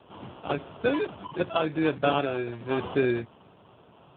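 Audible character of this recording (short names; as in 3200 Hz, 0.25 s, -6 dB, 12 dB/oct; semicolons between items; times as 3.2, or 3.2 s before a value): aliases and images of a low sample rate 2000 Hz, jitter 0%; AMR-NB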